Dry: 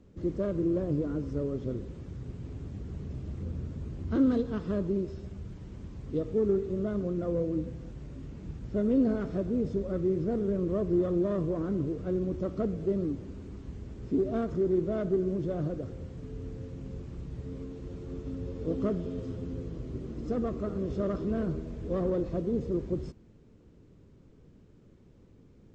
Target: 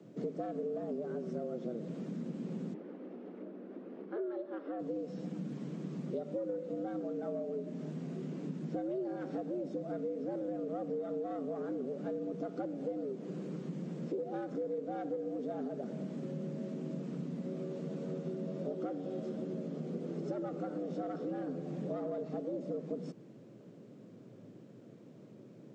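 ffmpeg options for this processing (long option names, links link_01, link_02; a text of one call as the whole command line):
ffmpeg -i in.wav -filter_complex "[0:a]acompressor=threshold=-38dB:ratio=6,asplit=3[link_01][link_02][link_03];[link_01]afade=type=out:start_time=2.73:duration=0.02[link_04];[link_02]highpass=200,lowpass=2000,afade=type=in:start_time=2.73:duration=0.02,afade=type=out:start_time=4.78:duration=0.02[link_05];[link_03]afade=type=in:start_time=4.78:duration=0.02[link_06];[link_04][link_05][link_06]amix=inputs=3:normalize=0,afreqshift=110,volume=2.5dB" out.wav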